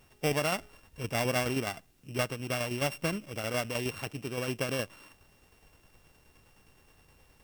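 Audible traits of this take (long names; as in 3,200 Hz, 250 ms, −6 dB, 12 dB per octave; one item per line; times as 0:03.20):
a buzz of ramps at a fixed pitch in blocks of 16 samples
tremolo saw down 9.6 Hz, depth 50%
a quantiser's noise floor 12 bits, dither triangular
Ogg Vorbis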